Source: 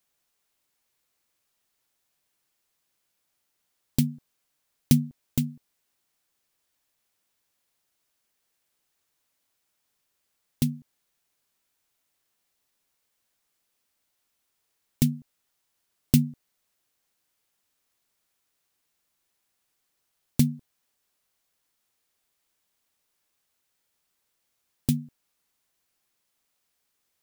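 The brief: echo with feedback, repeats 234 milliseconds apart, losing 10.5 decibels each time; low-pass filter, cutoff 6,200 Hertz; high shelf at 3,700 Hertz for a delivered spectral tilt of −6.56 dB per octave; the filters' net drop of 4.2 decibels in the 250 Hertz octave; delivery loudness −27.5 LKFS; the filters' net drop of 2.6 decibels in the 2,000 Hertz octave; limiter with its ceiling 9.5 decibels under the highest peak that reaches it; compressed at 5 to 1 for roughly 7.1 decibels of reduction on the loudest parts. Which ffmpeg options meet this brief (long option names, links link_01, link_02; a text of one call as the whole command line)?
ffmpeg -i in.wav -af "lowpass=6200,equalizer=frequency=250:width_type=o:gain=-5,equalizer=frequency=2000:width_type=o:gain=-4.5,highshelf=frequency=3700:gain=3.5,acompressor=threshold=-24dB:ratio=5,alimiter=limit=-18dB:level=0:latency=1,aecho=1:1:234|468|702:0.299|0.0896|0.0269,volume=12.5dB" out.wav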